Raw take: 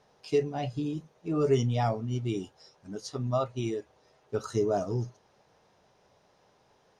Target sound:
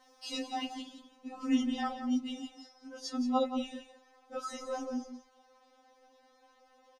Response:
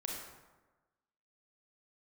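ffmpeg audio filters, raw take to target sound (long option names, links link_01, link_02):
-af "asetnsamples=nb_out_samples=441:pad=0,asendcmd='0.82 highshelf g -2.5',highshelf=frequency=3800:gain=7.5,aecho=1:1:174:0.299,afftfilt=real='re*3.46*eq(mod(b,12),0)':imag='im*3.46*eq(mod(b,12),0)':win_size=2048:overlap=0.75,volume=3dB"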